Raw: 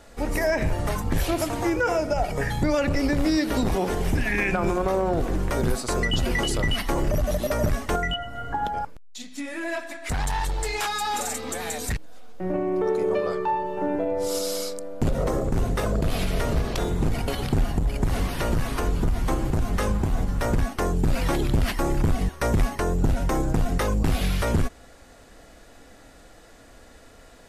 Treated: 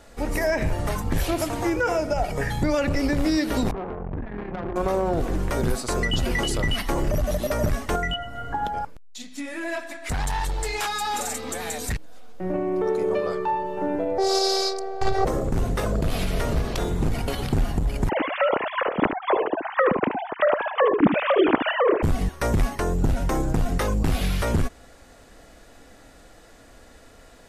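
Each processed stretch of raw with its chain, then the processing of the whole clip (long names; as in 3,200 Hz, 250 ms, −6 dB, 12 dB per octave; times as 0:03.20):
0:03.71–0:04.76: low-pass filter 1,200 Hz 24 dB per octave + tube saturation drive 26 dB, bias 0.8
0:14.18–0:15.25: drawn EQ curve 100 Hz 0 dB, 160 Hz +15 dB, 240 Hz −22 dB, 560 Hz +14 dB, 1,100 Hz +11 dB, 2,000 Hz +10 dB, 3,000 Hz +5 dB, 4,600 Hz +15 dB, 7,500 Hz 0 dB, 13,000 Hz −9 dB + phases set to zero 386 Hz
0:18.09–0:22.03: three sine waves on the formant tracks + single-tap delay 74 ms −8.5 dB
whole clip: no processing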